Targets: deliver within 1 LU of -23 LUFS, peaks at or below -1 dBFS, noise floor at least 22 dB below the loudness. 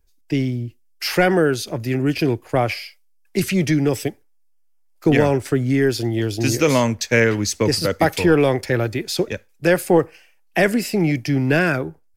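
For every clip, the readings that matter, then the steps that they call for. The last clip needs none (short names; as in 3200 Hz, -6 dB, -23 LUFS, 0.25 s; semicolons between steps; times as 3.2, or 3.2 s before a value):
loudness -19.5 LUFS; peak -3.0 dBFS; loudness target -23.0 LUFS
-> gain -3.5 dB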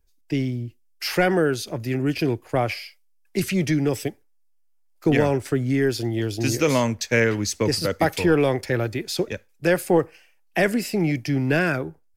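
loudness -23.0 LUFS; peak -6.5 dBFS; noise floor -60 dBFS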